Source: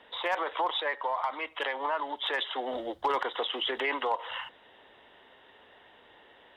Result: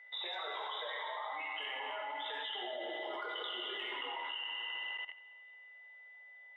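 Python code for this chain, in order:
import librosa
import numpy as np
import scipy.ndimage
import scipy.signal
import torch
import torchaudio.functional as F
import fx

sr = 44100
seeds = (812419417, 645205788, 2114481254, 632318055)

p1 = fx.noise_reduce_blind(x, sr, reduce_db=16)
p2 = p1 + 10.0 ** (-48.0 / 20.0) * np.sin(2.0 * np.pi * 2000.0 * np.arange(len(p1)) / sr)
p3 = fx.over_compress(p2, sr, threshold_db=-41.0, ratio=-1.0)
p4 = fx.high_shelf(p3, sr, hz=5600.0, db=-7.0)
p5 = p4 + 0.31 * np.pad(p4, (int(1.4 * sr / 1000.0), 0))[:len(p4)]
p6 = p5 + fx.echo_feedback(p5, sr, ms=280, feedback_pct=35, wet_db=-17, dry=0)
p7 = fx.dereverb_blind(p6, sr, rt60_s=0.69)
p8 = scipy.signal.sosfilt(scipy.signal.butter(4, 450.0, 'highpass', fs=sr, output='sos'), p7)
p9 = fx.rev_fdn(p8, sr, rt60_s=2.7, lf_ratio=1.0, hf_ratio=0.85, size_ms=50.0, drr_db=-3.5)
p10 = fx.level_steps(p9, sr, step_db=15)
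y = p10 * 10.0 ** (4.0 / 20.0)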